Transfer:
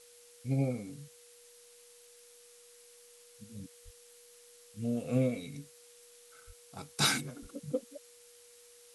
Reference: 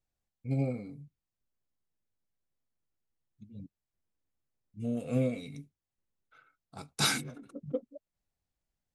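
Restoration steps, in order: notch 480 Hz, Q 30; de-plosive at 3.84/6.46/7.41; noise print and reduce 30 dB

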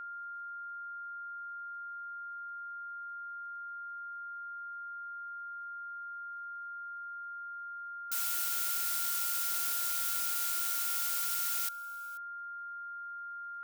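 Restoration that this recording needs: de-click; notch 1400 Hz, Q 30; inverse comb 0.486 s -22 dB

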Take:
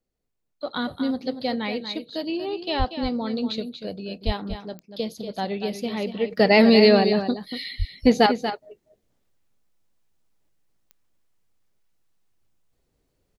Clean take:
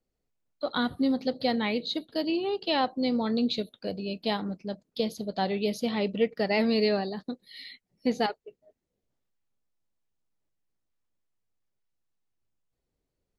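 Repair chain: de-click; 2.78–2.9 HPF 140 Hz 24 dB/oct; 4.25–4.37 HPF 140 Hz 24 dB/oct; 7.78–7.9 HPF 140 Hz 24 dB/oct; inverse comb 0.237 s -9.5 dB; 6.3 gain correction -10 dB

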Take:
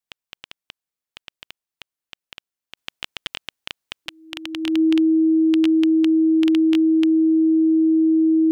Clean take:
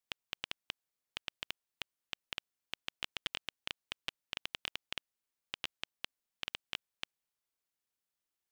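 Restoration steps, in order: notch 320 Hz, Q 30; gain correction -8 dB, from 2.77

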